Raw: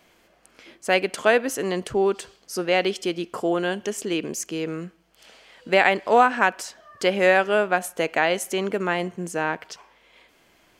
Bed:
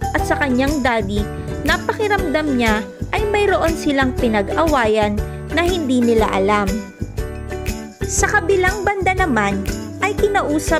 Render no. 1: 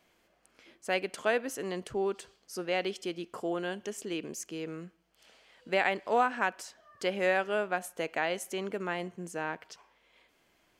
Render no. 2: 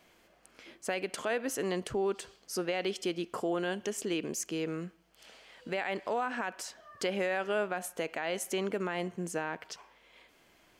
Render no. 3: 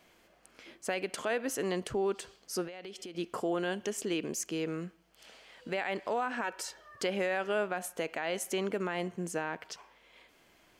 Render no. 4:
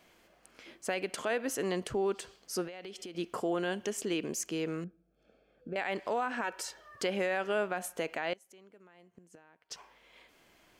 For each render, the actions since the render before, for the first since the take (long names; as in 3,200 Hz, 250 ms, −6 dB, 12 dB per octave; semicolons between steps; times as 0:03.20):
level −10 dB
in parallel at −1.5 dB: downward compressor, threshold −38 dBFS, peak gain reduction 16 dB; on the sum: brickwall limiter −22.5 dBFS, peak gain reduction 10.5 dB
0:02.67–0:03.15: downward compressor 16 to 1, threshold −40 dBFS; 0:06.44–0:06.96: comb filter 2.2 ms, depth 69%
0:04.84–0:05.76: moving average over 45 samples; 0:08.33–0:09.71: gate with flip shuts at −29 dBFS, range −25 dB